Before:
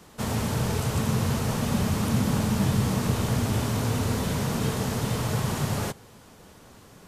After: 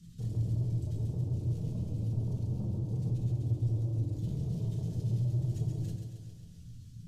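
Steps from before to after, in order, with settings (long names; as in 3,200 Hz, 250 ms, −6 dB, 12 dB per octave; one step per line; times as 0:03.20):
expanding power law on the bin magnitudes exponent 1.8
Chebyshev band-stop filter 120–4,200 Hz, order 2
in parallel at +1.5 dB: downward compressor, threshold −40 dBFS, peak gain reduction 17.5 dB
on the sum: brickwall limiter −21 dBFS, peak gain reduction 6 dB
soft clipping −30 dBFS, distortion −11 dB
feedback echo with a high-pass in the loop 136 ms, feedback 66%, high-pass 180 Hz, level −6 dB
on a send at −2 dB: convolution reverb RT60 0.45 s, pre-delay 7 ms
on the sum: level −5.5 dB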